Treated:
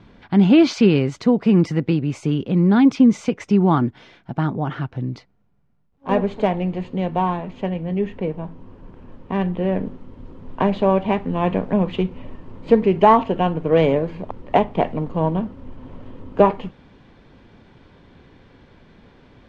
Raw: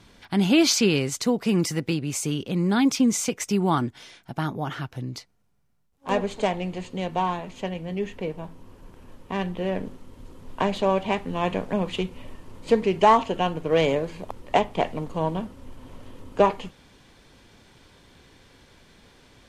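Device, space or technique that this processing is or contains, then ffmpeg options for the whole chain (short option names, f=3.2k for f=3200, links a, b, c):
phone in a pocket: -af "lowpass=3.9k,equalizer=f=190:t=o:w=1.6:g=3.5,highshelf=f=2.4k:g=-9.5,volume=4.5dB"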